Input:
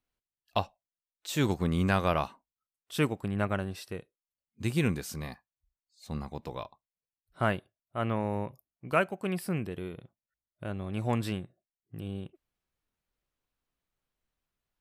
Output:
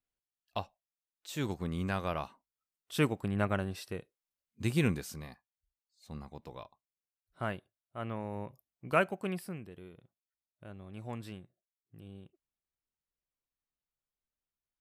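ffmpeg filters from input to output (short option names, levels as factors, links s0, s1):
-af "volume=2.11,afade=t=in:st=2.22:d=0.8:silence=0.473151,afade=t=out:st=4.85:d=0.42:silence=0.446684,afade=t=in:st=8.31:d=0.79:silence=0.421697,afade=t=out:st=9.1:d=0.47:silence=0.266073"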